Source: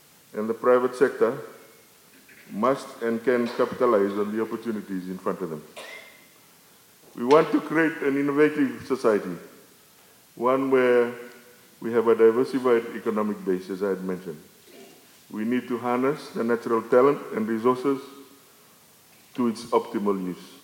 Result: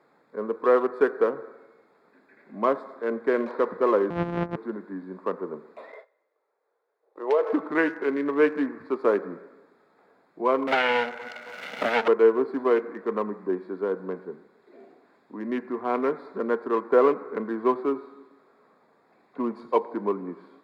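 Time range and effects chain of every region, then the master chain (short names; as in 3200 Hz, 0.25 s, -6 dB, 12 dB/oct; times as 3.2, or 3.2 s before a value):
4.1–4.56 sample sorter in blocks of 256 samples + LPF 2000 Hz + bell 88 Hz +13 dB 2.6 oct
5.92–7.53 gate -45 dBFS, range -18 dB + resonant low shelf 320 Hz -13.5 dB, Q 3 + compressor 3:1, threshold -20 dBFS
10.67–12.08 minimum comb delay 1.4 ms + weighting filter D + three-band squash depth 100%
whole clip: Wiener smoothing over 15 samples; three-band isolator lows -20 dB, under 240 Hz, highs -13 dB, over 3700 Hz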